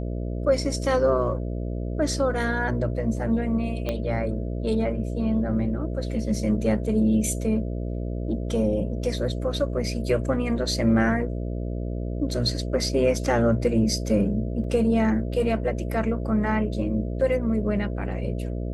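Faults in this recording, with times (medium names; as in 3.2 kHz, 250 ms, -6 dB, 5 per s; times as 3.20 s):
buzz 60 Hz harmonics 11 -29 dBFS
3.89 s: pop -14 dBFS
14.64 s: dropout 2.5 ms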